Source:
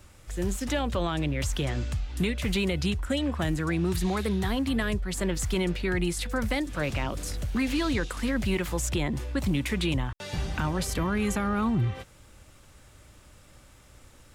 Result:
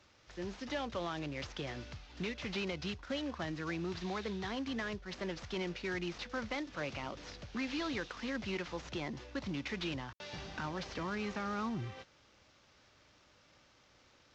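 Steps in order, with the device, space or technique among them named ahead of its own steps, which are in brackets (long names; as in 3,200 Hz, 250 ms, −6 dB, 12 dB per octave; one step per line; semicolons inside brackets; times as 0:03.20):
early wireless headset (high-pass filter 290 Hz 6 dB per octave; variable-slope delta modulation 32 kbit/s)
level −7.5 dB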